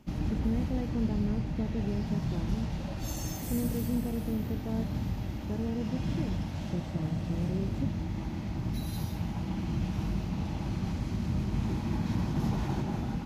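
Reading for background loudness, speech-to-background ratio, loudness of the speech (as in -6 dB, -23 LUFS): -34.0 LUFS, -2.0 dB, -36.0 LUFS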